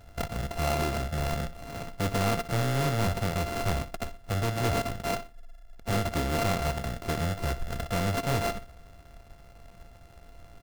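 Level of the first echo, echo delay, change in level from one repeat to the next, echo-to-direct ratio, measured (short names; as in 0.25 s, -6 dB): -14.5 dB, 61 ms, -10.0 dB, -14.0 dB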